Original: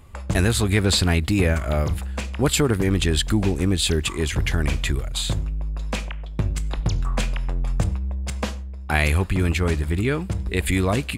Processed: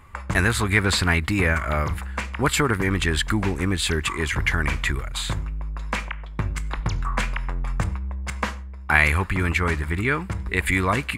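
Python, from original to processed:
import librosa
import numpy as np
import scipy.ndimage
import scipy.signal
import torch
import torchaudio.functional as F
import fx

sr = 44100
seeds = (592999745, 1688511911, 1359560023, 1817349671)

y = fx.band_shelf(x, sr, hz=1500.0, db=10.0, octaves=1.7)
y = fx.notch(y, sr, hz=2500.0, q=17.0)
y = F.gain(torch.from_numpy(y), -3.0).numpy()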